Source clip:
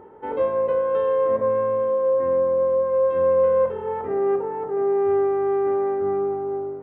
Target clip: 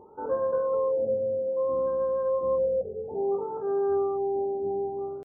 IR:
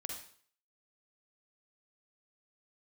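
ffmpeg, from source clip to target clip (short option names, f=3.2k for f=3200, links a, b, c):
-filter_complex "[0:a]atempo=1.3,asplit=2[a][b];[1:a]atrim=start_sample=2205[c];[b][c]afir=irnorm=-1:irlink=0,volume=-11dB[d];[a][d]amix=inputs=2:normalize=0,afftfilt=real='re*lt(b*sr/1024,780*pow(1800/780,0.5+0.5*sin(2*PI*0.6*pts/sr)))':imag='im*lt(b*sr/1024,780*pow(1800/780,0.5+0.5*sin(2*PI*0.6*pts/sr)))':win_size=1024:overlap=0.75,volume=-6.5dB"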